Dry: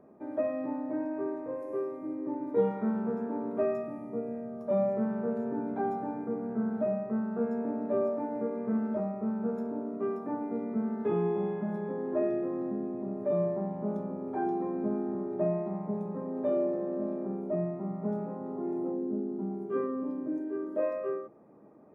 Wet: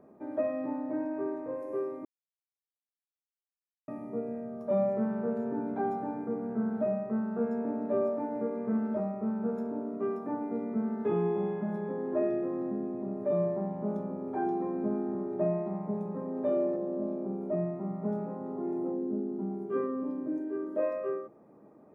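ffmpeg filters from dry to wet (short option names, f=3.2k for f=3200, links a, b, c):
-filter_complex "[0:a]asettb=1/sr,asplit=3[a][b][c];[a]atrim=end=16.764[d];[b]atrim=start=16.76:end=17.41,asetpts=PTS-STARTPTS,afade=t=in:d=0.004:c=qsin,afade=t=out:st=0.646:d=0.004:c=qsin,equalizer=f=1.8k:w=1.4:g=-8.5[e];[c]atrim=start=17.406[f];[d][e]acrossfade=d=0.004:c1=hsin:c2=qsin[g];[g][f]acrossfade=d=0.004:c1=qsin:c2=hsin,asplit=3[h][i][j];[h]atrim=end=2.05,asetpts=PTS-STARTPTS,afade=t=out:st=2.046:d=0.004:c=hsin[k];[i]atrim=start=2.05:end=3.88,asetpts=PTS-STARTPTS,volume=0[l];[j]atrim=start=3.88,asetpts=PTS-STARTPTS,afade=t=in:d=0.004:c=hsin[m];[k][l][m]concat=n=3:v=0:a=1"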